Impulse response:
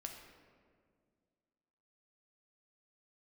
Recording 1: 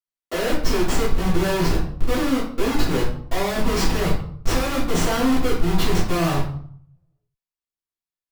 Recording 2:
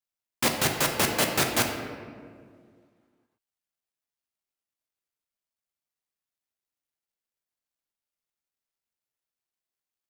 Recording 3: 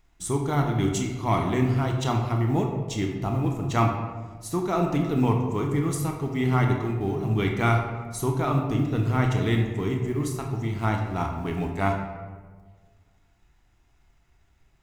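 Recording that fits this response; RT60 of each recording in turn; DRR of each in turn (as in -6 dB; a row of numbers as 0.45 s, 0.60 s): 2; 0.60 s, 2.0 s, 1.5 s; -11.0 dB, 2.0 dB, 1.5 dB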